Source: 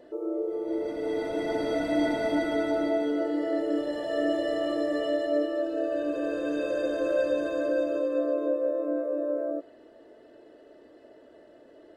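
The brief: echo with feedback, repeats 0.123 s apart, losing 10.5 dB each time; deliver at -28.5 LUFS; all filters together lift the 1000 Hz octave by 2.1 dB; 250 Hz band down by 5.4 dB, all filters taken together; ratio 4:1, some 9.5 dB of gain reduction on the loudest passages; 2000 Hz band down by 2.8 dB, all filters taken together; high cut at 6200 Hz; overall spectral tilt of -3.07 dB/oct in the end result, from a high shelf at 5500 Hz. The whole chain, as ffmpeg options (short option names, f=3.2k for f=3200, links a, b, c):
-af "lowpass=6.2k,equalizer=f=250:t=o:g=-7.5,equalizer=f=1k:t=o:g=5.5,equalizer=f=2k:t=o:g=-6.5,highshelf=f=5.5k:g=8,acompressor=threshold=-34dB:ratio=4,aecho=1:1:123|246|369:0.299|0.0896|0.0269,volume=7.5dB"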